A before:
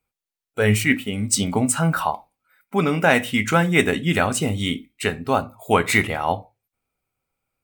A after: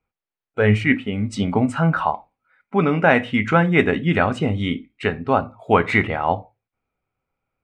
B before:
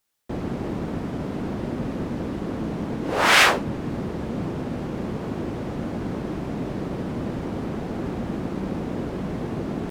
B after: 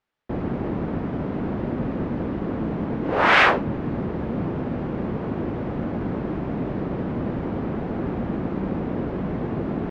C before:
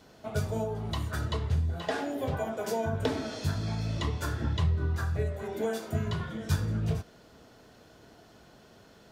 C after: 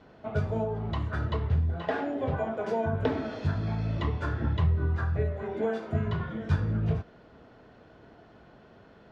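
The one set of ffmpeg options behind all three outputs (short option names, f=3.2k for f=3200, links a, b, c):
-af "lowpass=2.3k,volume=2dB"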